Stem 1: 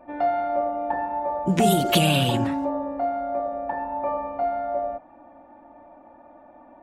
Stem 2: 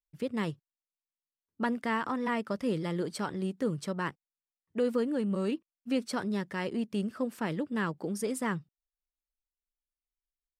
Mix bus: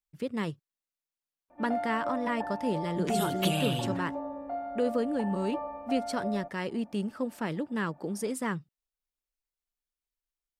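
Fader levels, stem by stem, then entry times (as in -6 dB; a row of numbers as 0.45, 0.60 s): -10.0, 0.0 dB; 1.50, 0.00 s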